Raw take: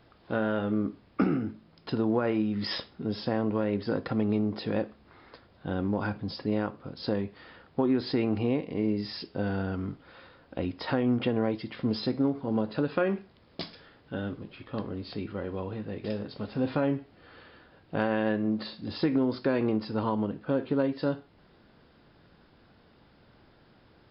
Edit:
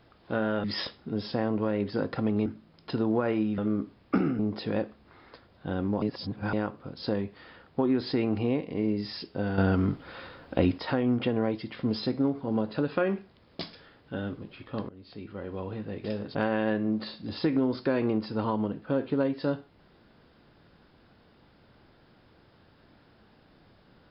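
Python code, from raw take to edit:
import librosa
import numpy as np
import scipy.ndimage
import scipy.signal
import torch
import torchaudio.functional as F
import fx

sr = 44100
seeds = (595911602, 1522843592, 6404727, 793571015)

y = fx.edit(x, sr, fx.swap(start_s=0.64, length_s=0.81, other_s=2.57, other_length_s=1.82),
    fx.reverse_span(start_s=6.02, length_s=0.51),
    fx.clip_gain(start_s=9.58, length_s=1.2, db=8.0),
    fx.fade_in_from(start_s=14.89, length_s=0.83, floor_db=-17.5),
    fx.cut(start_s=16.35, length_s=1.59), tone=tone)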